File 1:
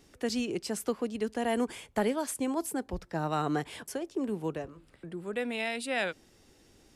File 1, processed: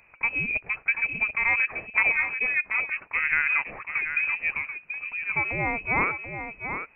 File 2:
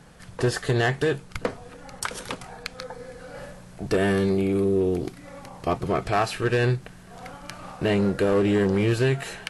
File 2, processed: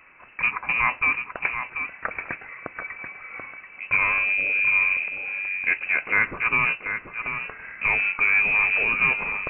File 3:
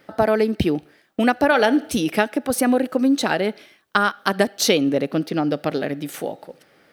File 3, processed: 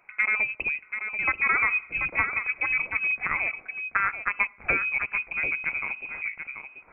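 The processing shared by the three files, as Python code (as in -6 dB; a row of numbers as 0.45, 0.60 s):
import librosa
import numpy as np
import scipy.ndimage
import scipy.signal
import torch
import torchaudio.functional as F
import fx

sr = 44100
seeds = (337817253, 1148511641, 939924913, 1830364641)

y = scipy.signal.sosfilt(scipy.signal.butter(2, 280.0, 'highpass', fs=sr, output='sos'), x)
y = y + 10.0 ** (-8.0 / 20.0) * np.pad(y, (int(735 * sr / 1000.0), 0))[:len(y)]
y = fx.freq_invert(y, sr, carrier_hz=2800)
y = librosa.util.normalize(y) * 10.0 ** (-9 / 20.0)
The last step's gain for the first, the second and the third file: +7.0, +2.0, -6.5 dB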